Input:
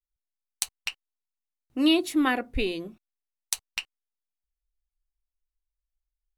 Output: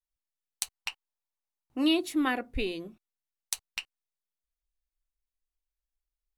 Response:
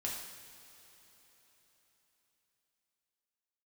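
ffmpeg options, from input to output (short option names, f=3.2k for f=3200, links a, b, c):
-filter_complex "[0:a]asettb=1/sr,asplit=3[a][b][c];[a]atrim=end=0.734[d];[b]atrim=start=0.73:end=1.84,asetpts=PTS-STARTPTS,afade=t=in:d=0.004:c=qsin,afade=t=out:st=1.106:d=0.004:c=qsin,equalizer=f=890:t=o:w=0.77:g=9[e];[c]atrim=start=1.836[f];[d][e]acrossfade=d=0.004:c1=hsin:c2=qsin[g];[g][f]acrossfade=d=0.004:c1=qsin:c2=hsin,volume=-4dB"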